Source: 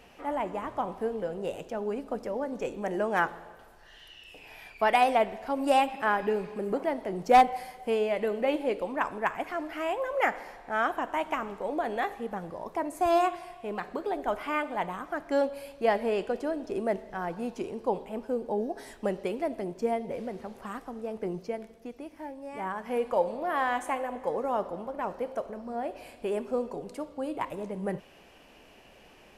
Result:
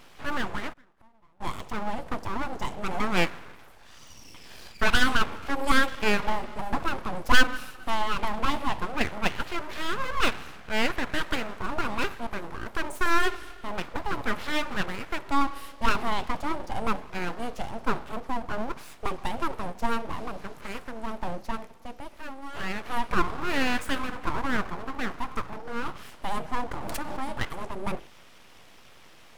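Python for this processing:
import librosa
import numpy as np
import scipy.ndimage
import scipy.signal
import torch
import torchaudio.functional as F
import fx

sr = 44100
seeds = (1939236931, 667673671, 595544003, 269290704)

y = fx.hum_notches(x, sr, base_hz=50, count=6)
y = fx.gate_flip(y, sr, shuts_db=-32.0, range_db=-30, at=(0.72, 1.4), fade=0.02)
y = fx.notch_comb(y, sr, f0_hz=390.0, at=(18.2, 19.24))
y = np.abs(y)
y = fx.pre_swell(y, sr, db_per_s=22.0, at=(26.71, 27.2))
y = y * librosa.db_to_amplitude(5.0)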